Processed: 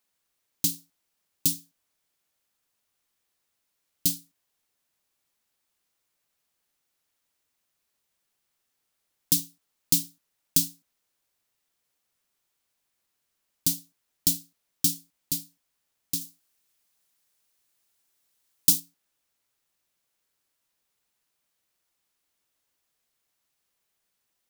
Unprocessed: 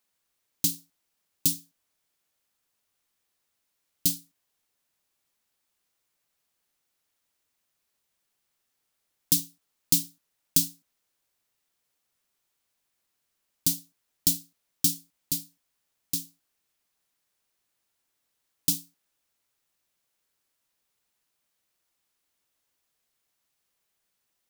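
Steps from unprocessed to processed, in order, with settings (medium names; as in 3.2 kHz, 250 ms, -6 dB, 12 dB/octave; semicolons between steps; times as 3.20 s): 16.21–18.80 s: treble shelf 3.7 kHz +6.5 dB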